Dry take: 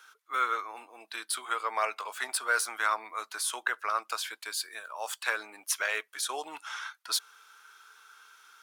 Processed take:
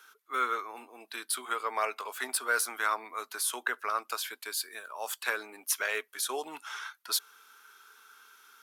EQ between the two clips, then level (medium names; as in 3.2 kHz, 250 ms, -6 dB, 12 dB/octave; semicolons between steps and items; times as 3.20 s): graphic EQ with 31 bands 160 Hz +6 dB, 250 Hz +11 dB, 400 Hz +8 dB, 12.5 kHz +11 dB; -1.5 dB